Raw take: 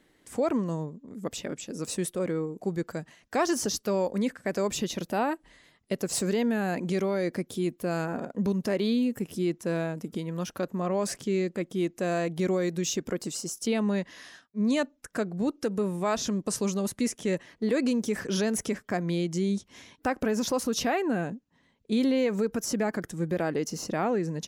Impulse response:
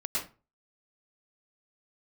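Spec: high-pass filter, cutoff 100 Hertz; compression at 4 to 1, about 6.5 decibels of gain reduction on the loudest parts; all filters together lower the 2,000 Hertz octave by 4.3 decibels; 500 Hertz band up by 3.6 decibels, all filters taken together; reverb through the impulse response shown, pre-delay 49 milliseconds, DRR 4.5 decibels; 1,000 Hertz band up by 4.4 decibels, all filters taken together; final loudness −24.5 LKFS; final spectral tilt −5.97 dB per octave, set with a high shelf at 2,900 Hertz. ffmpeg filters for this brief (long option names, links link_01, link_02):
-filter_complex "[0:a]highpass=100,equalizer=frequency=500:width_type=o:gain=3.5,equalizer=frequency=1000:width_type=o:gain=6.5,equalizer=frequency=2000:width_type=o:gain=-6.5,highshelf=frequency=2900:gain=-5.5,acompressor=threshold=-26dB:ratio=4,asplit=2[link_01][link_02];[1:a]atrim=start_sample=2205,adelay=49[link_03];[link_02][link_03]afir=irnorm=-1:irlink=0,volume=-10dB[link_04];[link_01][link_04]amix=inputs=2:normalize=0,volume=6dB"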